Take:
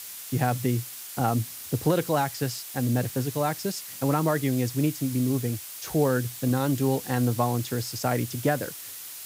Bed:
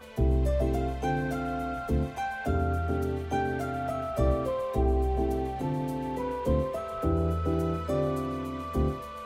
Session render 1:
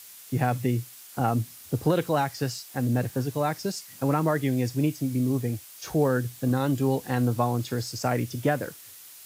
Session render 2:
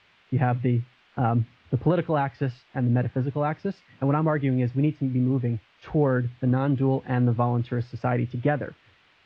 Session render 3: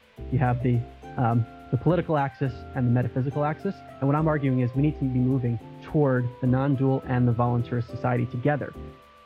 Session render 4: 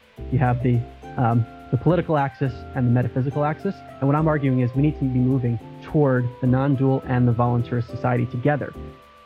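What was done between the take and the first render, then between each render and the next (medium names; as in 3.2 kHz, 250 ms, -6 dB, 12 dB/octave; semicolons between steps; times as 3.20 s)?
noise print and reduce 7 dB
low-pass 2.9 kHz 24 dB/octave; bass shelf 100 Hz +9 dB
add bed -13 dB
trim +3.5 dB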